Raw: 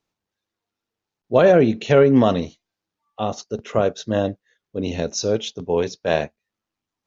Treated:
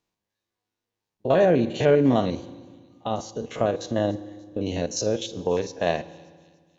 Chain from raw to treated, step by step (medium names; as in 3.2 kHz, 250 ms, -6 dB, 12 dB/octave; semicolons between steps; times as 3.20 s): spectrogram pixelated in time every 50 ms; in parallel at -2 dB: compression, threshold -26 dBFS, peak gain reduction 15.5 dB; on the sum: band-stop 1.3 kHz, Q 10; speed mistake 24 fps film run at 25 fps; on a send at -15 dB: reverberation RT60 1.7 s, pre-delay 3 ms; on the sum: short-mantissa float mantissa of 8-bit; feedback echo behind a high-pass 291 ms, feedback 48%, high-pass 3.9 kHz, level -19 dB; trim -5 dB